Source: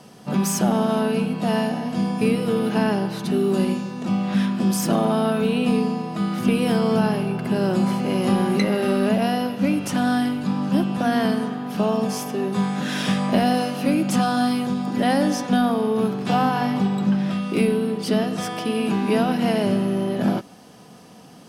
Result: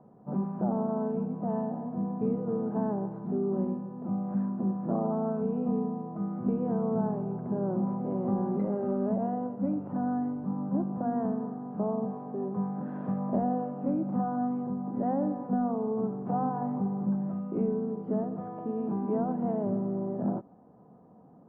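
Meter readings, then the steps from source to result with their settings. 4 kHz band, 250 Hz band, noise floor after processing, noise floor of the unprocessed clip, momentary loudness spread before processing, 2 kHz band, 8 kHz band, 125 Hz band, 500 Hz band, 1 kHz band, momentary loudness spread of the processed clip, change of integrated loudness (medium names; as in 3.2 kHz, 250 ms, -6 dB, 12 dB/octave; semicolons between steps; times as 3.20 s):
under -40 dB, -9.0 dB, -55 dBFS, -45 dBFS, 5 LU, under -25 dB, under -40 dB, -9.0 dB, -9.0 dB, -10.0 dB, 4 LU, -9.5 dB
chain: low-pass 1 kHz 24 dB/octave; trim -9 dB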